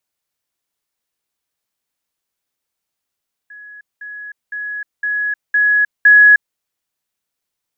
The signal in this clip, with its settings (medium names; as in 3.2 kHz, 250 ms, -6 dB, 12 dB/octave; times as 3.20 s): level ladder 1.68 kHz -34 dBFS, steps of 6 dB, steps 6, 0.31 s 0.20 s